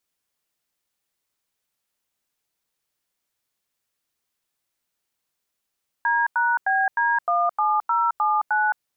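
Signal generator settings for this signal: DTMF "D#BD17079", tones 216 ms, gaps 91 ms, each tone -20.5 dBFS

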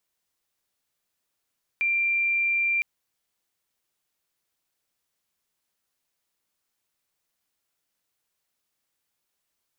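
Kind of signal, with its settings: tone sine 2.37 kHz -21 dBFS 1.01 s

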